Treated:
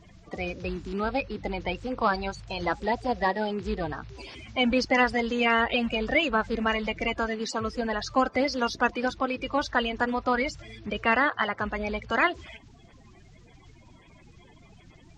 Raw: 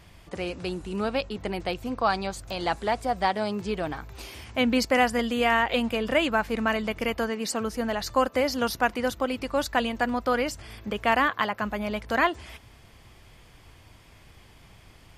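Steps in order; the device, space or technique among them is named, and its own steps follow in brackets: clip after many re-uploads (low-pass 6.1 kHz 24 dB/octave; coarse spectral quantiser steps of 30 dB)

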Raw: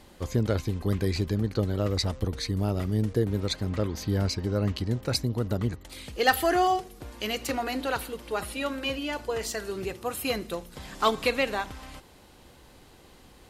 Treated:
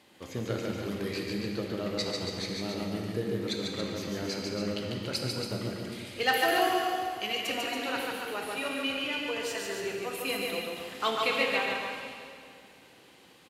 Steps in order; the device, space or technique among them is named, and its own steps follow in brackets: stadium PA (high-pass 170 Hz 12 dB/octave; peaking EQ 2.6 kHz +7 dB 1.2 oct; loudspeakers at several distances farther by 50 m -3 dB, 96 m -7 dB; reverberation RT60 2.3 s, pre-delay 7 ms, DRR 1.5 dB); trim -8 dB

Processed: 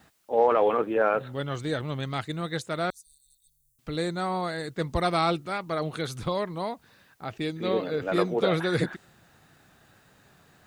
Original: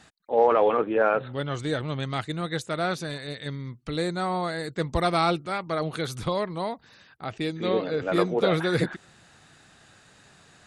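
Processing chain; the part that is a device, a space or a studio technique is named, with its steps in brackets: plain cassette with noise reduction switched in (tape noise reduction on one side only decoder only; wow and flutter 24 cents; white noise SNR 41 dB); 2.90–3.79 s: inverse Chebyshev band-stop 220–1600 Hz, stop band 80 dB; trim -1.5 dB

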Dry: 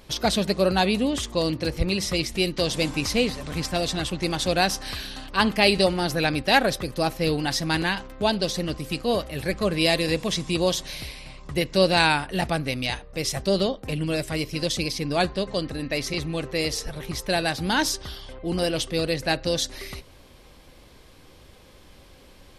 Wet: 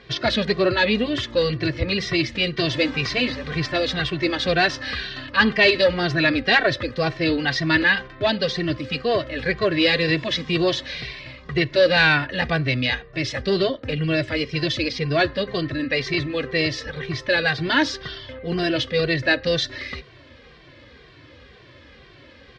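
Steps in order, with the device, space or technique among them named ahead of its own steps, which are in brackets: barber-pole flanger into a guitar amplifier (endless flanger 2.1 ms -2 Hz; saturation -16 dBFS, distortion -18 dB; cabinet simulation 75–4400 Hz, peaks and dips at 120 Hz +4 dB, 190 Hz -8 dB, 830 Hz -9 dB, 1.8 kHz +8 dB); trim +8 dB

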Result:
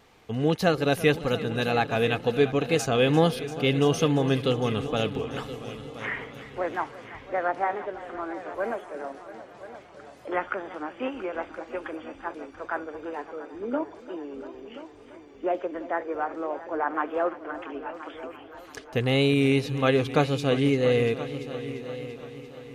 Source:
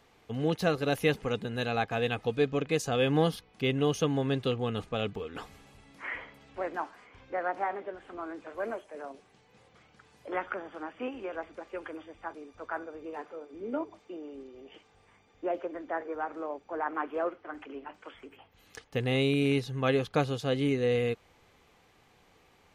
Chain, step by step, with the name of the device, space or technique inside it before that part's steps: multi-head tape echo (multi-head delay 342 ms, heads all three, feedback 46%, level -17 dB; wow and flutter); trim +5 dB

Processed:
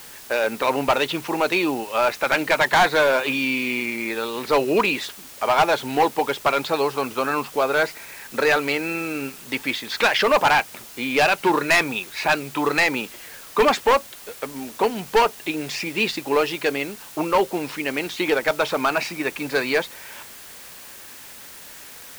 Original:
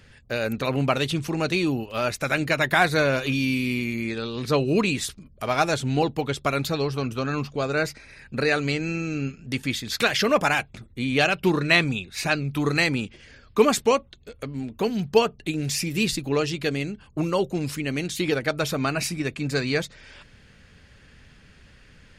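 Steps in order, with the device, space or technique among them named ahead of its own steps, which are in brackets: drive-through speaker (band-pass 400–3200 Hz; peaking EQ 910 Hz +8.5 dB 0.36 oct; hard clipper -18.5 dBFS, distortion -9 dB; white noise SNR 19 dB); trim +6.5 dB

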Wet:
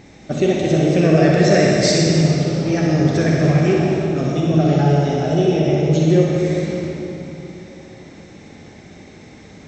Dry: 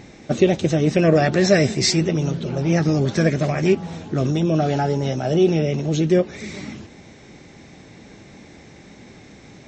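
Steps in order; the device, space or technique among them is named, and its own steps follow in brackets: tape echo 158 ms, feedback 72%, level -10 dB, low-pass 2 kHz; tunnel (flutter echo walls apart 10.8 m, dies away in 0.55 s; reverberation RT60 3.1 s, pre-delay 37 ms, DRR -1.5 dB); trim -2.5 dB

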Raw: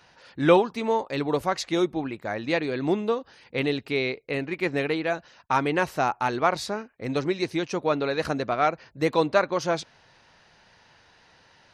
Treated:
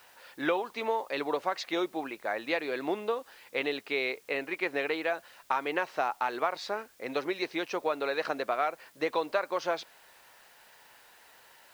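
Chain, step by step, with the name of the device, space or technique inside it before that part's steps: baby monitor (band-pass 470–4000 Hz; compression, threshold -25 dBFS, peak gain reduction 10.5 dB; white noise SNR 29 dB)

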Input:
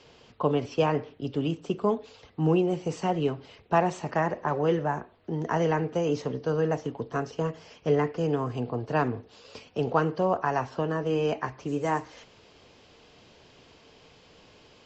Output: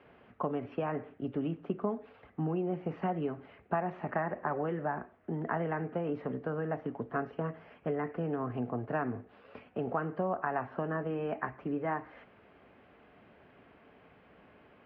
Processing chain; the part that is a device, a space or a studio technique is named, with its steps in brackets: bass amplifier (compression 5:1, threshold -26 dBFS, peak gain reduction 9 dB; cabinet simulation 70–2000 Hz, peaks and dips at 89 Hz -9 dB, 140 Hz -8 dB, 330 Hz -4 dB, 480 Hz -7 dB, 960 Hz -6 dB); trim +1 dB

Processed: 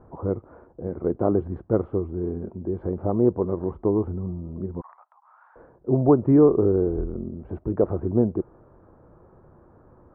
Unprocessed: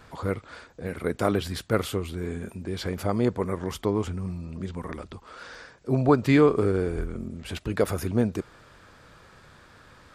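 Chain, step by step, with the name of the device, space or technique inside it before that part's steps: under water (low-pass 930 Hz 24 dB/octave; peaking EQ 350 Hz +7 dB 0.32 oct); 4.81–5.56 s: steep high-pass 820 Hz 48 dB/octave; trim +1.5 dB

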